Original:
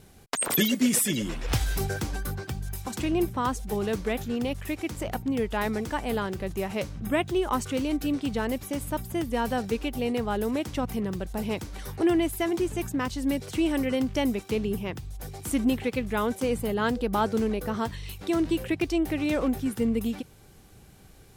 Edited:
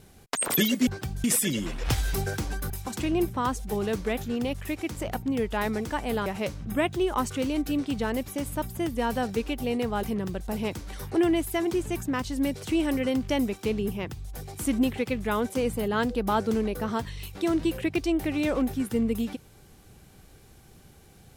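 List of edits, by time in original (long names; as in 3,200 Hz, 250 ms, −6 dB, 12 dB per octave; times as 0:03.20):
0:02.33–0:02.70: move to 0:00.87
0:06.26–0:06.61: remove
0:10.38–0:10.89: remove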